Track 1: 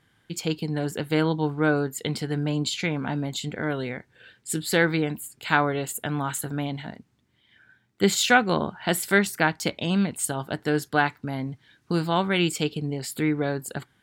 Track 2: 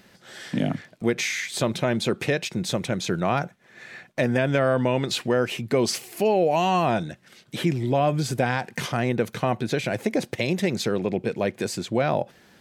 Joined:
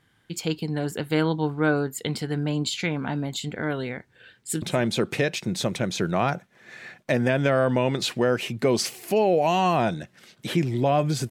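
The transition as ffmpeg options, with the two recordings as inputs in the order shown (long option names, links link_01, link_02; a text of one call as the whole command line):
ffmpeg -i cue0.wav -i cue1.wav -filter_complex "[0:a]apad=whole_dur=11.3,atrim=end=11.3,atrim=end=4.622[link_01];[1:a]atrim=start=1.708:end=8.39[link_02];[link_01][link_02]acrossfade=duration=0.004:curve1=hsin:curve2=hsin,asplit=2[link_03][link_04];[link_04]afade=type=in:start_time=4.31:duration=0.01,afade=type=out:start_time=4.62:duration=0.01,aecho=0:1:220|440|660|880:0.133352|0.0666761|0.033338|0.016669[link_05];[link_03][link_05]amix=inputs=2:normalize=0" out.wav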